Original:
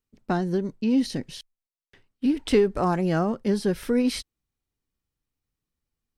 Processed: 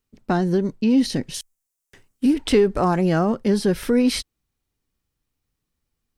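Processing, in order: 1.34–2.34 s: resonant high shelf 5.4 kHz +8.5 dB, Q 1.5; in parallel at +0.5 dB: peak limiter -19 dBFS, peak gain reduction 10 dB

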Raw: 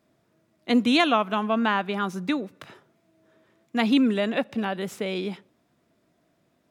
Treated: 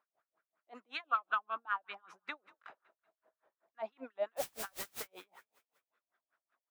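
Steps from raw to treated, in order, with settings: 1.05–1.76 s: graphic EQ with 31 bands 315 Hz +12 dB, 1.25 kHz +6 dB, 2 kHz -10 dB; harmonic-percussive split harmonic -9 dB; bass shelf 430 Hz -9 dB; compression 5:1, threshold -29 dBFS, peak gain reduction 10 dB; wah-wah 5.4 Hz 610–1500 Hz, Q 3.7; 2.60–3.76 s: doubling 45 ms -4 dB; 4.36–5.06 s: added noise white -48 dBFS; frequency-shifting echo 188 ms, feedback 52%, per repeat +31 Hz, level -22.5 dB; logarithmic tremolo 5.2 Hz, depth 36 dB; trim +8.5 dB

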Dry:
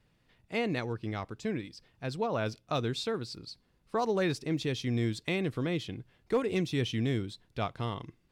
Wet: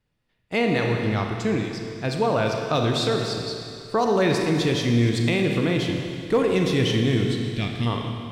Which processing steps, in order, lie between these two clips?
time-frequency box 7.51–7.87 s, 360–1600 Hz -14 dB; Schroeder reverb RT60 2.5 s, combs from 26 ms, DRR 2.5 dB; in parallel at +3 dB: peak limiter -23 dBFS, peak gain reduction 6.5 dB; on the sum: gate -46 dBFS, range -17 dB; trim +2 dB

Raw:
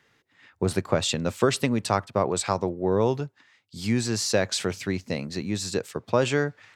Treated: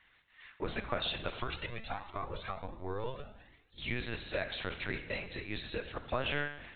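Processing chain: high-pass 450 Hz 6 dB/octave; tilt shelf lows -5 dB, about 820 Hz; compression 12:1, threshold -25 dBFS, peak gain reduction 9 dB; Schroeder reverb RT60 1 s, combs from 31 ms, DRR 8 dB; LPC vocoder at 8 kHz pitch kept; 1.40–3.78 s: Shepard-style flanger rising 1.4 Hz; trim -3.5 dB

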